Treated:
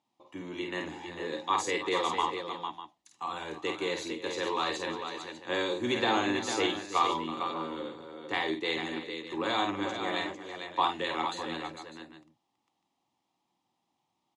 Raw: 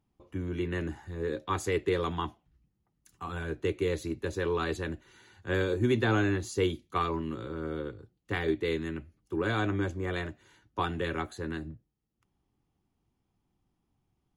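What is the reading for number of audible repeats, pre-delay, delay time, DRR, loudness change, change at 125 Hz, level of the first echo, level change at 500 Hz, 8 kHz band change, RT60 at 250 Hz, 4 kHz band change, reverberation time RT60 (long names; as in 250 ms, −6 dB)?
4, no reverb audible, 50 ms, no reverb audible, 0.0 dB, −14.5 dB, −5.0 dB, −2.5 dB, +4.5 dB, no reverb audible, +8.0 dB, no reverb audible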